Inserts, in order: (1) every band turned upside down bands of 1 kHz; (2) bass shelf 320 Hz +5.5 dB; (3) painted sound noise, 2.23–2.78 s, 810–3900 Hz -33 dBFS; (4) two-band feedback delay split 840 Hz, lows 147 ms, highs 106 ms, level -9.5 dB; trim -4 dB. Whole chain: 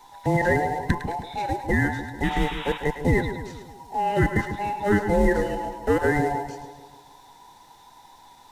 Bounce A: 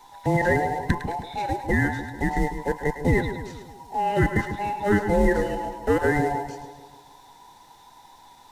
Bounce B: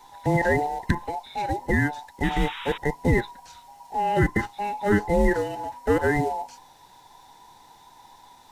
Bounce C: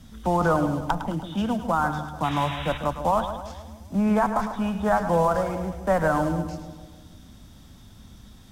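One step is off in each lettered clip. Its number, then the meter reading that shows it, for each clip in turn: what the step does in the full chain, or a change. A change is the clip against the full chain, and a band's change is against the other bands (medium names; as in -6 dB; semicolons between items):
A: 3, 4 kHz band -3.5 dB; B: 4, echo-to-direct -8.0 dB to none; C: 1, 2 kHz band -5.5 dB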